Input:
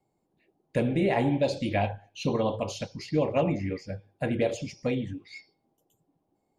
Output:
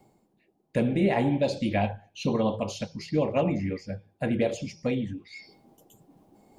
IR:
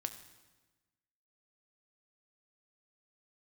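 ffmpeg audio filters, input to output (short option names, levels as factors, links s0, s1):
-af "equalizer=f=210:w=5.1:g=6.5,bandreject=f=81.3:t=h:w=4,bandreject=f=162.6:t=h:w=4,areverse,acompressor=mode=upward:threshold=0.00708:ratio=2.5,areverse"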